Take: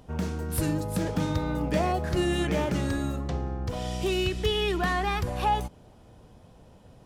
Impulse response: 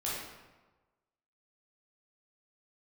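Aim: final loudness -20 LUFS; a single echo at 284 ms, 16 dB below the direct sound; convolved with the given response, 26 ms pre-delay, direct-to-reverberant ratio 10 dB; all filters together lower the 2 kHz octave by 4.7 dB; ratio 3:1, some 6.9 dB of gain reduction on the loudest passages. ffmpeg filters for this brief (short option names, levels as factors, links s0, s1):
-filter_complex "[0:a]equalizer=f=2000:t=o:g=-6,acompressor=threshold=0.0282:ratio=3,aecho=1:1:284:0.158,asplit=2[s0][s1];[1:a]atrim=start_sample=2205,adelay=26[s2];[s1][s2]afir=irnorm=-1:irlink=0,volume=0.178[s3];[s0][s3]amix=inputs=2:normalize=0,volume=4.73"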